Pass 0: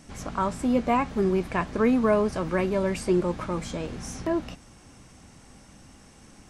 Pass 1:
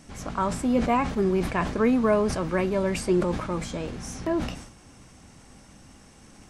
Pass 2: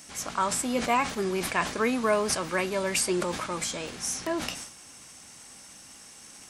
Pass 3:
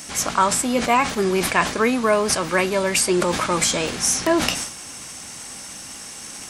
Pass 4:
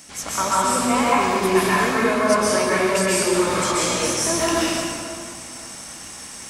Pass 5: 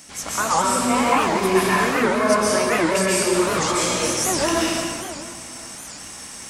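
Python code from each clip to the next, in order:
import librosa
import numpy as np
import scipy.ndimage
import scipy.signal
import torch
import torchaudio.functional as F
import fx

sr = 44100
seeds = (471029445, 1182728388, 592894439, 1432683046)

y1 = fx.sustainer(x, sr, db_per_s=74.0)
y2 = fx.tilt_eq(y1, sr, slope=3.5)
y3 = fx.rider(y2, sr, range_db=10, speed_s=0.5)
y3 = y3 * 10.0 ** (8.5 / 20.0)
y4 = fx.rev_plate(y3, sr, seeds[0], rt60_s=2.3, hf_ratio=0.65, predelay_ms=115, drr_db=-8.0)
y4 = y4 * 10.0 ** (-8.0 / 20.0)
y5 = fx.record_warp(y4, sr, rpm=78.0, depth_cents=250.0)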